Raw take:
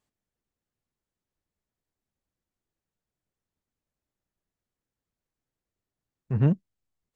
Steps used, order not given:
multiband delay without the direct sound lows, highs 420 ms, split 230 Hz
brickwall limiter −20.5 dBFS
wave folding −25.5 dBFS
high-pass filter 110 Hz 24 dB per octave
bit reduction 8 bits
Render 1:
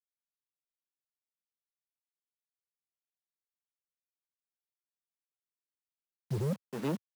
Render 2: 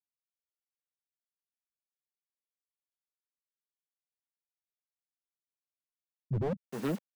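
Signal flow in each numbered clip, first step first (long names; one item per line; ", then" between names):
multiband delay without the direct sound, then brickwall limiter, then bit reduction, then wave folding, then high-pass filter
high-pass filter, then bit reduction, then multiband delay without the direct sound, then wave folding, then brickwall limiter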